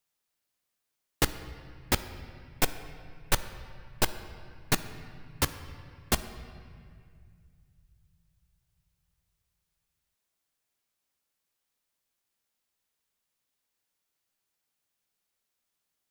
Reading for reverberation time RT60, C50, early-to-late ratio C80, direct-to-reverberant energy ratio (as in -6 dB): 2.1 s, 12.0 dB, 13.0 dB, 11.0 dB